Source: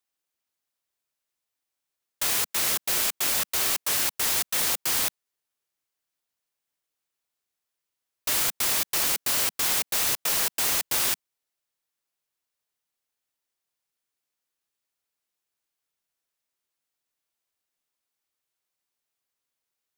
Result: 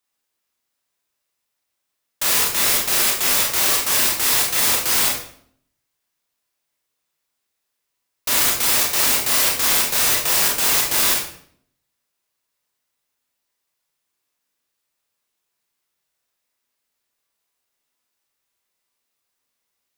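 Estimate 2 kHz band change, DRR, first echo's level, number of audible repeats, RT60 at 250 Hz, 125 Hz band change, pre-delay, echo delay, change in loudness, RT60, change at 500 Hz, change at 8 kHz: +8.0 dB, −2.5 dB, no echo audible, no echo audible, 0.75 s, +7.5 dB, 21 ms, no echo audible, +7.5 dB, 0.60 s, +8.0 dB, +7.5 dB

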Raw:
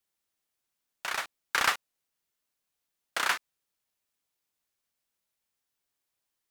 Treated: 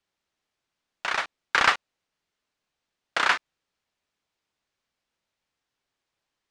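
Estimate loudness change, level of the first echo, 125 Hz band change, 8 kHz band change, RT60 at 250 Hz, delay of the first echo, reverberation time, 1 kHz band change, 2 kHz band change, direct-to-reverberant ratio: +5.5 dB, no echo audible, can't be measured, −2.0 dB, no reverb audible, no echo audible, no reverb audible, +6.5 dB, +6.0 dB, no reverb audible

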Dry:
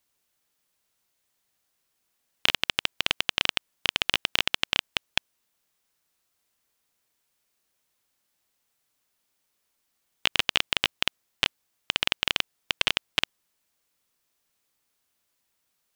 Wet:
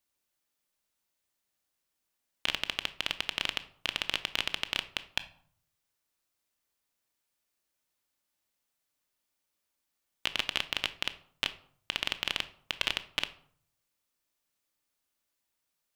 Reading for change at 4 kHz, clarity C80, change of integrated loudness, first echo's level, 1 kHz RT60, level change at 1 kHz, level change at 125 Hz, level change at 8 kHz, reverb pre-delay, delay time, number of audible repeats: −6.5 dB, 19.5 dB, −6.5 dB, no echo audible, 0.55 s, −6.5 dB, −7.0 dB, −6.5 dB, 3 ms, no echo audible, no echo audible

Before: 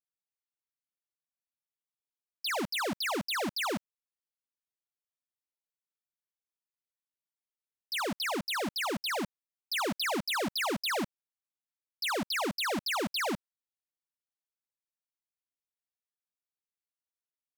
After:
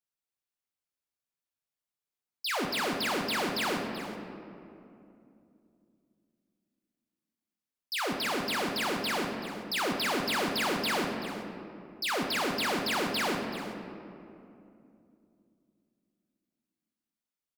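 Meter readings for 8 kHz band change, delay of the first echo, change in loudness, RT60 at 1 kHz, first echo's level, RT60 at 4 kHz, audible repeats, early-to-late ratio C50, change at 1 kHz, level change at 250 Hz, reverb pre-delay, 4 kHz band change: +1.0 dB, 382 ms, +1.5 dB, 2.4 s, −12.5 dB, 1.3 s, 1, 3.5 dB, +2.5 dB, +2.5 dB, 7 ms, +1.5 dB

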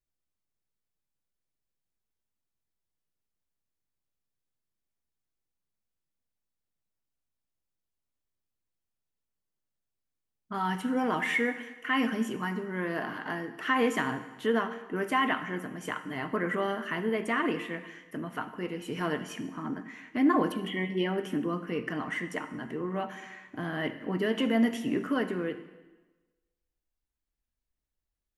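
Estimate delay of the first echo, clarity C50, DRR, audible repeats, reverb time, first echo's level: no echo audible, 11.5 dB, 11.0 dB, no echo audible, 1.2 s, no echo audible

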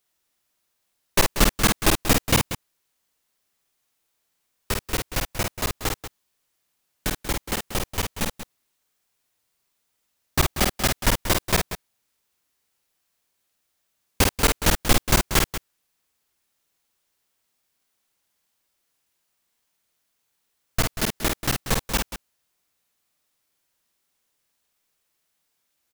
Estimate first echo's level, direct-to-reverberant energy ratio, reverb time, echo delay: −4.0 dB, no reverb audible, no reverb audible, 50 ms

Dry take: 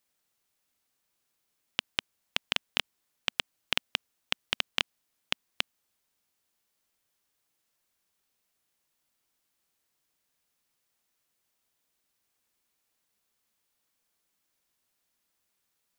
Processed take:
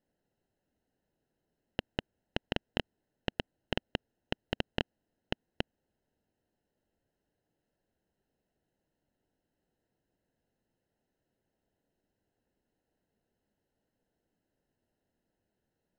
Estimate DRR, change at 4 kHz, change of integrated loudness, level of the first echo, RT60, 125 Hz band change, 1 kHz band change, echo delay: no reverb audible, −9.5 dB, −6.0 dB, no echo audible, no reverb audible, +10.5 dB, −2.0 dB, no echo audible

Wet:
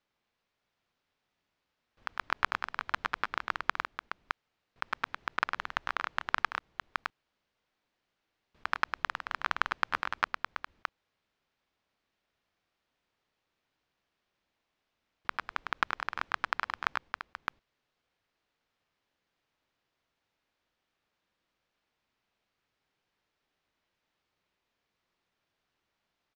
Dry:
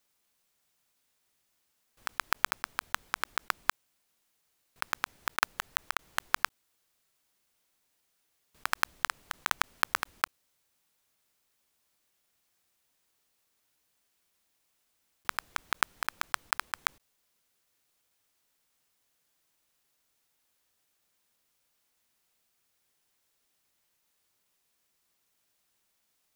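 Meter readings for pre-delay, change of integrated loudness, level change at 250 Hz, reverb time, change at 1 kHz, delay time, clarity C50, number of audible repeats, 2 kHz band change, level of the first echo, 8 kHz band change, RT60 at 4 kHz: no reverb audible, −2.0 dB, +1.5 dB, no reverb audible, +0.5 dB, 104 ms, no reverb audible, 2, 0.0 dB, −6.0 dB, −16.5 dB, no reverb audible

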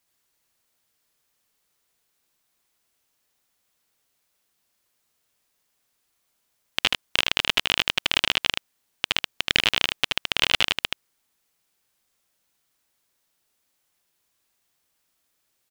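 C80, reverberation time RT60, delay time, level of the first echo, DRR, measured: no reverb audible, no reverb audible, 77 ms, −3.5 dB, no reverb audible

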